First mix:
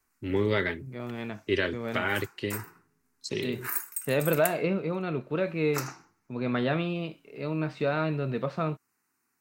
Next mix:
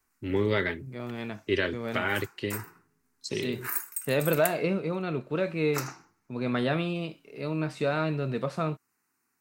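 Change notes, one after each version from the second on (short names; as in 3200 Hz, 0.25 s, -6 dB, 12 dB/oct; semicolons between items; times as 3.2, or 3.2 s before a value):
second voice: remove LPF 4100 Hz 12 dB/oct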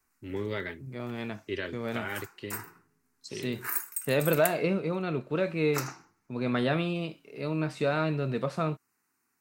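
first voice -7.5 dB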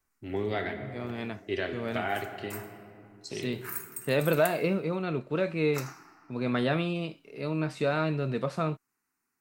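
first voice: remove Butterworth band-stop 720 Hz, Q 3.4; background -7.0 dB; reverb: on, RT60 2.5 s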